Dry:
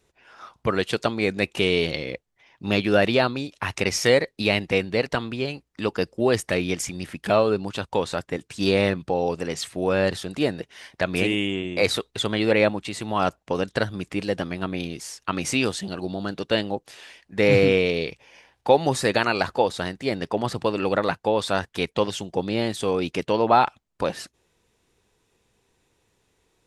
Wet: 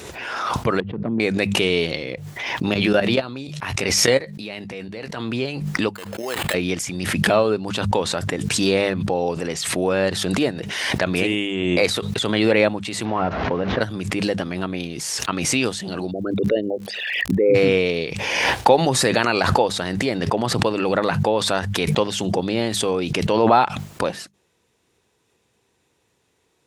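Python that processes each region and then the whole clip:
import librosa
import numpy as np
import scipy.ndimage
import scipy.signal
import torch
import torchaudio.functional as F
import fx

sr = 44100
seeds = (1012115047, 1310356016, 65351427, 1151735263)

y = fx.chain(x, sr, fx.bandpass_q(hz=190.0, q=1.3),
    fx.clip_hard(threshold_db=-23.0),
    fx.air_absorb(metres=430.0), at=(0.8, 1.2))
y = fx.chain(y, sr, fx.level_steps(step_db=17),
    fx.doubler(ms=15.0, db=-12.0), at=(2.74, 5.22))
y = fx.chain(y, sr, fx.level_steps(step_db=10),
    fx.highpass(hz=1200.0, slope=6),
    fx.sample_hold(seeds[0], rate_hz=5800.0, jitter_pct=0), at=(5.94, 6.54))
y = fx.chain(y, sr, fx.delta_mod(bps=32000, step_db=-33.0),
    fx.lowpass(hz=1900.0, slope=12),
    fx.doubler(ms=12.0, db=-13), at=(13.05, 13.81))
y = fx.envelope_sharpen(y, sr, power=3.0, at=(16.1, 17.54), fade=0.02)
y = fx.dmg_crackle(y, sr, seeds[1], per_s=110.0, level_db=-54.0, at=(16.1, 17.54), fade=0.02)
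y = scipy.signal.sosfilt(scipy.signal.butter(2, 77.0, 'highpass', fs=sr, output='sos'), y)
y = fx.hum_notches(y, sr, base_hz=50, count=4)
y = fx.pre_swell(y, sr, db_per_s=31.0)
y = F.gain(torch.from_numpy(y), 1.5).numpy()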